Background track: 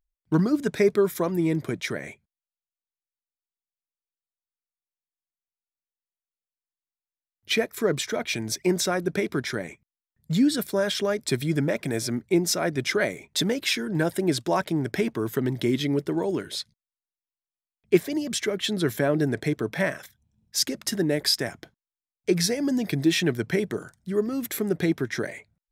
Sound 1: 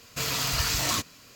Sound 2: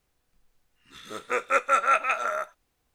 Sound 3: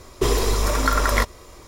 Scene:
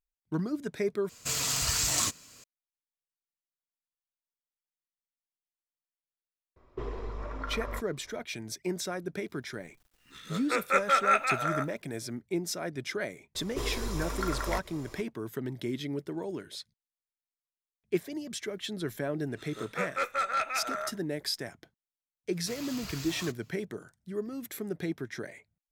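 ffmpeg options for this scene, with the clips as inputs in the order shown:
-filter_complex "[1:a]asplit=2[s0][s1];[3:a]asplit=2[s2][s3];[2:a]asplit=2[s4][s5];[0:a]volume=0.316[s6];[s0]equalizer=f=8000:t=o:w=0.81:g=11[s7];[s2]lowpass=1800[s8];[s4]acrusher=bits=10:mix=0:aa=0.000001[s9];[s3]acompressor=mode=upward:threshold=0.0562:ratio=2.5:attack=3.2:release=140:knee=2.83:detection=peak[s10];[s5]asoftclip=type=tanh:threshold=0.141[s11];[s6]asplit=2[s12][s13];[s12]atrim=end=1.094[s14];[s7]atrim=end=1.35,asetpts=PTS-STARTPTS,volume=0.531[s15];[s13]atrim=start=2.436[s16];[s8]atrim=end=1.67,asetpts=PTS-STARTPTS,volume=0.15,afade=t=in:d=0.004:c=hsin,afade=t=out:st=1.666:d=0.004:c=hsin,adelay=6560[s17];[s9]atrim=end=2.94,asetpts=PTS-STARTPTS,volume=0.75,afade=t=in:d=0.004:c=hsin,afade=t=out:st=2.936:d=0.004:c=hsin,adelay=9200[s18];[s10]atrim=end=1.67,asetpts=PTS-STARTPTS,volume=0.2,afade=t=in:d=0.004:c=hsin,afade=t=out:st=1.666:d=0.004:c=hsin,adelay=13350[s19];[s11]atrim=end=2.94,asetpts=PTS-STARTPTS,volume=0.531,afade=t=in:d=0.004:c=hsin,afade=t=out:st=2.936:d=0.004:c=hsin,adelay=18460[s20];[s1]atrim=end=1.35,asetpts=PTS-STARTPTS,volume=0.168,afade=t=in:d=0.004:c=hsin,afade=t=out:st=1.346:d=0.004:c=hsin,adelay=22300[s21];[s14][s15]acrossfade=d=0.004:c1=hsin:c2=hsin[s22];[s22][s16]acrossfade=d=0.004:c1=hsin:c2=hsin[s23];[s23][s17][s18][s19][s20][s21]amix=inputs=6:normalize=0"

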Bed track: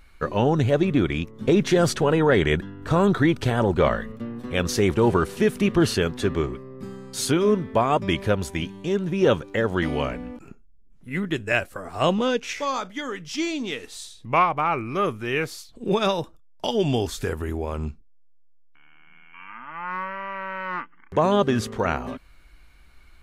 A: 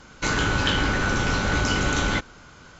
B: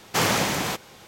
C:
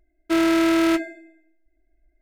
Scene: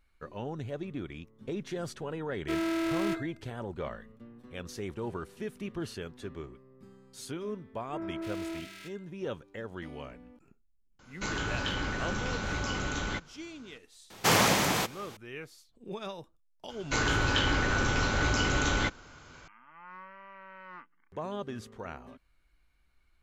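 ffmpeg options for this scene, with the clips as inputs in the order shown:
-filter_complex "[3:a]asplit=2[s0][s1];[1:a]asplit=2[s2][s3];[0:a]volume=0.133[s4];[s1]acrossover=split=180|1500[s5][s6][s7];[s6]adelay=60[s8];[s7]adelay=350[s9];[s5][s8][s9]amix=inputs=3:normalize=0[s10];[s3]bandreject=f=190:w=5.2[s11];[s0]atrim=end=2.21,asetpts=PTS-STARTPTS,volume=0.251,afade=t=in:d=0.004:c=hsin,afade=t=out:st=2.206:d=0.004:c=hsin,adelay=2180[s12];[s10]atrim=end=2.21,asetpts=PTS-STARTPTS,volume=0.126,afade=t=in:d=0.004:c=hsin,afade=t=out:st=2.206:d=0.004:c=hsin,adelay=7570[s13];[s2]atrim=end=2.79,asetpts=PTS-STARTPTS,volume=0.299,afade=t=in:d=0.004:c=hsin,afade=t=out:st=2.786:d=0.004:c=hsin,adelay=10990[s14];[2:a]atrim=end=1.07,asetpts=PTS-STARTPTS,volume=0.841,afade=t=in:d=0.004:c=hsin,afade=t=out:st=1.066:d=0.004:c=hsin,adelay=14100[s15];[s11]atrim=end=2.79,asetpts=PTS-STARTPTS,volume=0.596,afade=t=in:d=0.004:c=hsin,afade=t=out:st=2.786:d=0.004:c=hsin,adelay=16690[s16];[s4][s12][s13][s14][s15][s16]amix=inputs=6:normalize=0"

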